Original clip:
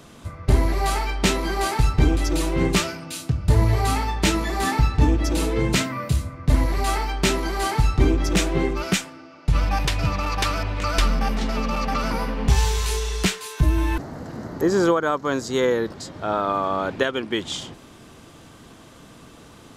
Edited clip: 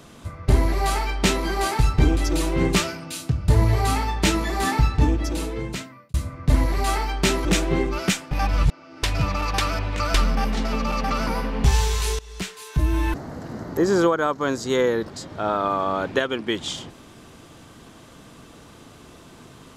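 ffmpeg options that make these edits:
ffmpeg -i in.wav -filter_complex "[0:a]asplit=6[link_01][link_02][link_03][link_04][link_05][link_06];[link_01]atrim=end=6.14,asetpts=PTS-STARTPTS,afade=type=out:start_time=4.87:duration=1.27[link_07];[link_02]atrim=start=6.14:end=7.452,asetpts=PTS-STARTPTS,afade=type=in:duration=0.004:curve=hsin[link_08];[link_03]atrim=start=8.288:end=9.152[link_09];[link_04]atrim=start=9.148:end=9.872,asetpts=PTS-STARTPTS,areverse[link_10];[link_05]atrim=start=9.868:end=13.03,asetpts=PTS-STARTPTS,afade=type=out:start_time=3.158:duration=0.004:curve=hsin:silence=0.0944061[link_11];[link_06]atrim=start=13.03,asetpts=PTS-STARTPTS,afade=type=in:duration=0.84:silence=0.0944061[link_12];[link_07][link_08]concat=n=2:v=0:a=1[link_13];[link_13][link_09]acrossfade=duration=0.004:curve1=hsin:curve2=hsin[link_14];[link_14][link_10]acrossfade=duration=0.004:curve1=hsin:curve2=hsin[link_15];[link_11][link_12]concat=n=2:v=0:a=1[link_16];[link_15][link_16]acrossfade=duration=0.004:curve1=hsin:curve2=hsin" out.wav

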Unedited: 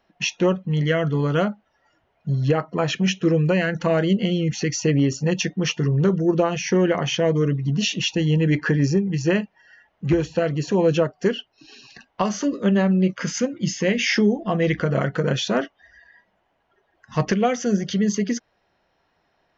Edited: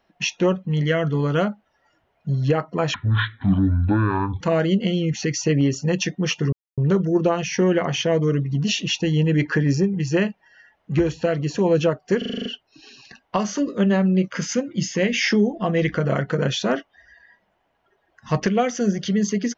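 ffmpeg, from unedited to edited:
ffmpeg -i in.wav -filter_complex "[0:a]asplit=11[link_01][link_02][link_03][link_04][link_05][link_06][link_07][link_08][link_09][link_10][link_11];[link_01]atrim=end=2.944[link_12];[link_02]atrim=start=2.94:end=3.79,asetpts=PTS-STARTPTS,asetrate=25578,aresample=44100,atrim=end_sample=64629,asetpts=PTS-STARTPTS[link_13];[link_03]atrim=start=3.786:end=5.91,asetpts=PTS-STARTPTS,afade=type=out:start_time=2.12:duration=0.004:curve=hsin,apad=pad_dur=0.25[link_14];[link_04]atrim=start=5.91:end=11.352,asetpts=PTS-STARTPTS,afade=type=in:duration=0.004:curve=hsin[link_15];[link_05]atrim=start=11.308:end=11.352[link_16];[link_06]atrim=start=11.308:end=11.352[link_17];[link_07]atrim=start=11.308:end=11.352[link_18];[link_08]atrim=start=11.308:end=11.352[link_19];[link_09]atrim=start=11.308:end=11.352[link_20];[link_10]atrim=start=11.308:end=11.352[link_21];[link_11]atrim=start=11.308[link_22];[link_12][link_13]acrossfade=duration=0.004:curve1=hsin:curve2=hsin[link_23];[link_14][link_15]concat=n=2:v=0:a=1[link_24];[link_23][link_24]acrossfade=duration=0.004:curve1=hsin:curve2=hsin[link_25];[link_25][link_16]acrossfade=duration=0.004:curve1=hsin:curve2=hsin[link_26];[link_26][link_17]acrossfade=duration=0.004:curve1=hsin:curve2=hsin[link_27];[link_27][link_18]acrossfade=duration=0.004:curve1=hsin:curve2=hsin[link_28];[link_28][link_19]acrossfade=duration=0.004:curve1=hsin:curve2=hsin[link_29];[link_29][link_20]acrossfade=duration=0.004:curve1=hsin:curve2=hsin[link_30];[link_30][link_21]acrossfade=duration=0.004:curve1=hsin:curve2=hsin[link_31];[link_31][link_22]acrossfade=duration=0.004:curve1=hsin:curve2=hsin" out.wav

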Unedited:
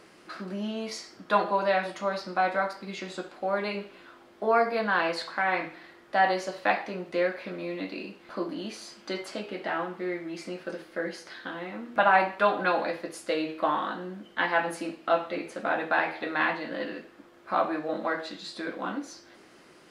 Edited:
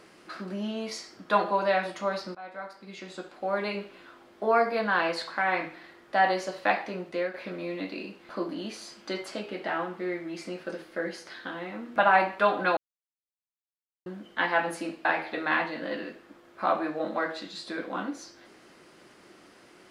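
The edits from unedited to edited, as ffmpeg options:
ffmpeg -i in.wav -filter_complex "[0:a]asplit=6[link_01][link_02][link_03][link_04][link_05][link_06];[link_01]atrim=end=2.35,asetpts=PTS-STARTPTS,afade=type=out:start_time=2.346:duration=0.004:curve=hsin:silence=0.0794328[link_07];[link_02]atrim=start=2.35:end=7.34,asetpts=PTS-STARTPTS,afade=type=in:duration=1.29:silence=0.0794328,afade=type=out:start_time=4.65:duration=0.34:silence=0.446684[link_08];[link_03]atrim=start=7.34:end=12.77,asetpts=PTS-STARTPTS,afade=type=in:duration=0.004:curve=hsin:silence=0.446684,afade=type=out:start_time=5.426:duration=0.004:curve=hsin[link_09];[link_04]atrim=start=12.77:end=14.06,asetpts=PTS-STARTPTS,volume=0[link_10];[link_05]atrim=start=14.06:end=15.052,asetpts=PTS-STARTPTS,afade=type=in:duration=0.004:curve=hsin[link_11];[link_06]atrim=start=15.938[link_12];[link_07][link_08][link_09][link_10][link_11]concat=n=5:v=0:a=1[link_13];[link_13][link_12]acrossfade=duration=0.004:curve1=hsin:curve2=hsin" out.wav

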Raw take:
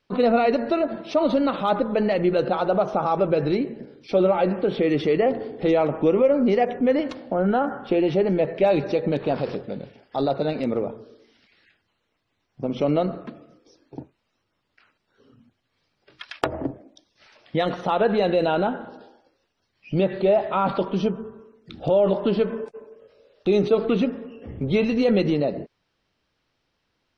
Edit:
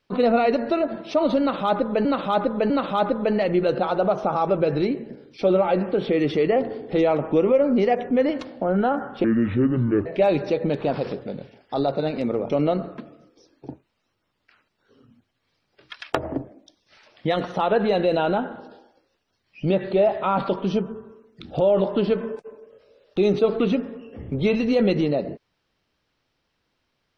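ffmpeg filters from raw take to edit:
ffmpeg -i in.wav -filter_complex "[0:a]asplit=6[link_01][link_02][link_03][link_04][link_05][link_06];[link_01]atrim=end=2.052[link_07];[link_02]atrim=start=1.398:end=2.052[link_08];[link_03]atrim=start=1.398:end=7.944[link_09];[link_04]atrim=start=7.94:end=8.48,asetpts=PTS-STARTPTS,asetrate=29106,aresample=44100[link_10];[link_05]atrim=start=8.476:end=10.922[link_11];[link_06]atrim=start=12.788[link_12];[link_07][link_08]acrossfade=duration=0.004:curve1=hsin:curve2=hsin[link_13];[link_13][link_09]acrossfade=duration=0.004:curve1=hsin:curve2=hsin[link_14];[link_14][link_10]acrossfade=duration=0.004:curve1=hsin:curve2=hsin[link_15];[link_15][link_11]acrossfade=duration=0.004:curve1=hsin:curve2=hsin[link_16];[link_16][link_12]acrossfade=duration=0.004:curve1=hsin:curve2=hsin" out.wav

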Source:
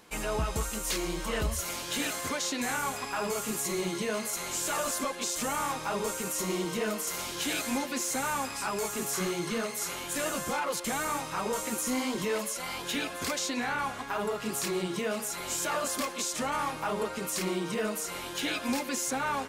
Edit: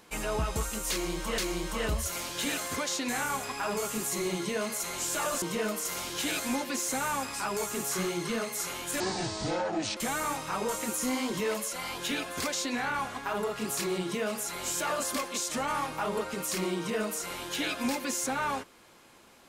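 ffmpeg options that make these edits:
ffmpeg -i in.wav -filter_complex "[0:a]asplit=5[link_01][link_02][link_03][link_04][link_05];[link_01]atrim=end=1.382[link_06];[link_02]atrim=start=0.908:end=4.952[link_07];[link_03]atrim=start=6.638:end=10.224[link_08];[link_04]atrim=start=10.22:end=10.81,asetpts=PTS-STARTPTS,asetrate=26901,aresample=44100,atrim=end_sample=42654,asetpts=PTS-STARTPTS[link_09];[link_05]atrim=start=10.806[link_10];[link_06][link_07]acrossfade=duration=0.004:curve1=hsin:curve2=hsin[link_11];[link_11][link_08]acrossfade=duration=0.004:curve1=hsin:curve2=hsin[link_12];[link_12][link_09]acrossfade=duration=0.004:curve1=hsin:curve2=hsin[link_13];[link_13][link_10]acrossfade=duration=0.004:curve1=hsin:curve2=hsin" out.wav

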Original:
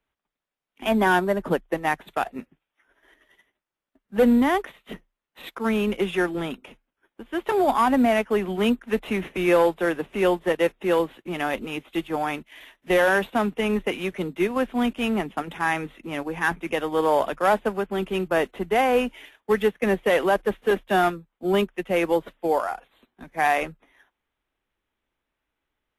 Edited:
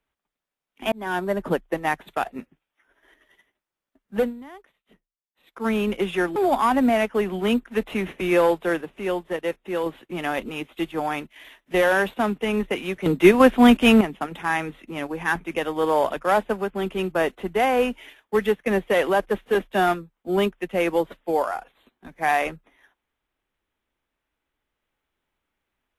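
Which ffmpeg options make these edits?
ffmpeg -i in.wav -filter_complex "[0:a]asplit=9[link_01][link_02][link_03][link_04][link_05][link_06][link_07][link_08][link_09];[link_01]atrim=end=0.92,asetpts=PTS-STARTPTS,afade=type=out:start_time=0.916:duration=0.004:curve=hsin[link_10];[link_02]atrim=start=0.92:end=4.36,asetpts=PTS-STARTPTS,afade=type=in:duration=0.46,afade=type=out:start_time=3.26:duration=0.18:curve=qua:silence=0.0891251[link_11];[link_03]atrim=start=4.36:end=5.45,asetpts=PTS-STARTPTS,volume=-21dB[link_12];[link_04]atrim=start=5.45:end=6.362,asetpts=PTS-STARTPTS,afade=type=in:duration=0.18:curve=qua:silence=0.0891251[link_13];[link_05]atrim=start=7.518:end=9.972[link_14];[link_06]atrim=start=9.968:end=11.022,asetpts=PTS-STARTPTS,volume=-5dB[link_15];[link_07]atrim=start=11.018:end=14.222[link_16];[link_08]atrim=start=14.218:end=15.172,asetpts=PTS-STARTPTS,volume=10dB[link_17];[link_09]atrim=start=15.168[link_18];[link_10][link_11][link_12][link_13]concat=n=4:v=0:a=1[link_19];[link_19][link_14]acrossfade=duration=0.004:curve1=hsin:curve2=hsin[link_20];[link_20][link_15]acrossfade=duration=0.004:curve1=hsin:curve2=hsin[link_21];[link_21][link_16]acrossfade=duration=0.004:curve1=hsin:curve2=hsin[link_22];[link_22][link_17]acrossfade=duration=0.004:curve1=hsin:curve2=hsin[link_23];[link_23][link_18]acrossfade=duration=0.004:curve1=hsin:curve2=hsin" out.wav

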